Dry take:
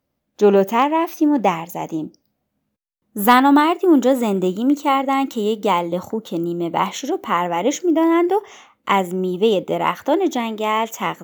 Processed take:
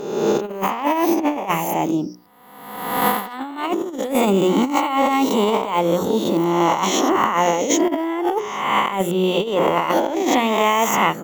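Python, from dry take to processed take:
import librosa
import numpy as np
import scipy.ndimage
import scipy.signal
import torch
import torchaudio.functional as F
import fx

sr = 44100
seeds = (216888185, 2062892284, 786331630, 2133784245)

y = fx.spec_swells(x, sr, rise_s=1.18)
y = fx.hum_notches(y, sr, base_hz=60, count=10)
y = fx.over_compress(y, sr, threshold_db=-18.0, ratio=-0.5)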